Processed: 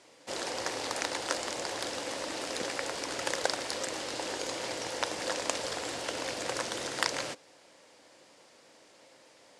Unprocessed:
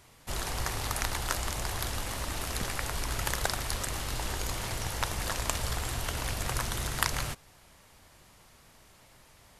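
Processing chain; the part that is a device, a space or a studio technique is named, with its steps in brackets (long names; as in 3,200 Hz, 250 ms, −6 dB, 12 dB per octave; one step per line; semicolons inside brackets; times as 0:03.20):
full-range speaker at full volume (highs frequency-modulated by the lows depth 0.13 ms; loudspeaker in its box 290–8,800 Hz, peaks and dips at 300 Hz +8 dB, 520 Hz +10 dB, 1,200 Hz −4 dB, 4,900 Hz +3 dB)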